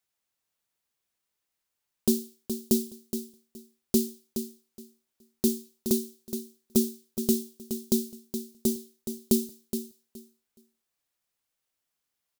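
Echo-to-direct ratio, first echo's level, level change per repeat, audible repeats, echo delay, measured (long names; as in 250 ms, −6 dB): −9.0 dB, −9.0 dB, −14.5 dB, 2, 420 ms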